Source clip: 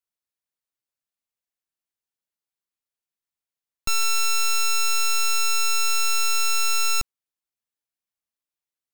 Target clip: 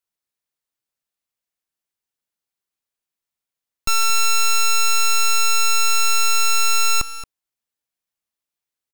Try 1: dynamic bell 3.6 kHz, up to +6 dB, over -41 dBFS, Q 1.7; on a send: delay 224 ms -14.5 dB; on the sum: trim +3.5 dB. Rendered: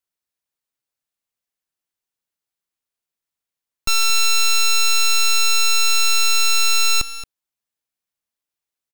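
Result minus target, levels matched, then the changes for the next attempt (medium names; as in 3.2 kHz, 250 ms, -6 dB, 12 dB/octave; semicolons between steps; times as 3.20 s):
1 kHz band -5.5 dB
change: dynamic bell 1.1 kHz, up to +6 dB, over -41 dBFS, Q 1.7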